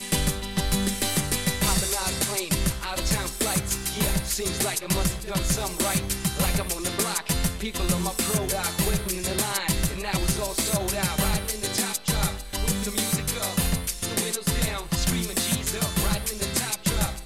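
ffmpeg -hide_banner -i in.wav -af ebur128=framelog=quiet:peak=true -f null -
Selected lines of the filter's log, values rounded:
Integrated loudness:
  I:         -25.4 LUFS
  Threshold: -35.3 LUFS
Loudness range:
  LRA:         0.9 LU
  Threshold: -45.4 LUFS
  LRA low:   -25.7 LUFS
  LRA high:  -24.8 LUFS
True peak:
  Peak:      -12.3 dBFS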